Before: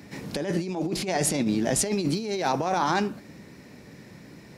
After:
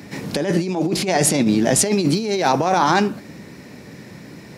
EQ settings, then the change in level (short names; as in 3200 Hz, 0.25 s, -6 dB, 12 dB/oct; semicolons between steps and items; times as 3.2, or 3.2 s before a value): HPF 68 Hz; +8.0 dB